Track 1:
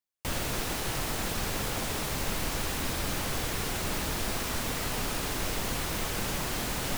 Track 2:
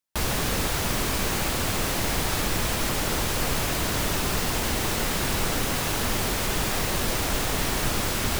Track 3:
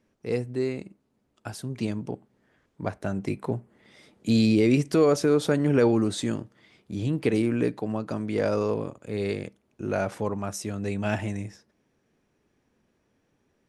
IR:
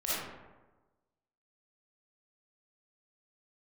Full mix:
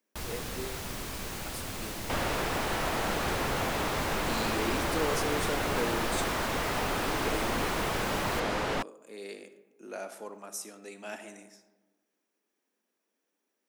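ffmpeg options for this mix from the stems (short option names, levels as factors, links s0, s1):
-filter_complex "[0:a]highshelf=f=9200:g=-10.5,asplit=2[s0][s1];[s1]highpass=f=720:p=1,volume=7.08,asoftclip=type=tanh:threshold=0.106[s2];[s0][s2]amix=inputs=2:normalize=0,lowpass=f=1100:p=1,volume=0.501,adelay=1850,volume=1.12[s3];[1:a]volume=0.251[s4];[2:a]highpass=f=220:w=0.5412,highpass=f=220:w=1.3066,aemphasis=mode=production:type=bsi,volume=0.251,asplit=2[s5][s6];[s6]volume=0.158[s7];[3:a]atrim=start_sample=2205[s8];[s7][s8]afir=irnorm=-1:irlink=0[s9];[s3][s4][s5][s9]amix=inputs=4:normalize=0"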